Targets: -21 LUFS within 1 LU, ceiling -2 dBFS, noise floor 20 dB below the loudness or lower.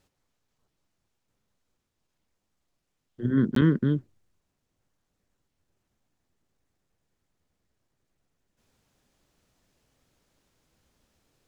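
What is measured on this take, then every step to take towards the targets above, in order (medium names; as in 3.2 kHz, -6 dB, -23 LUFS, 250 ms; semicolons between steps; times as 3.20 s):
dropouts 1; longest dropout 13 ms; loudness -25.0 LUFS; peak level -11.0 dBFS; loudness target -21.0 LUFS
-> interpolate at 3.55 s, 13 ms; trim +4 dB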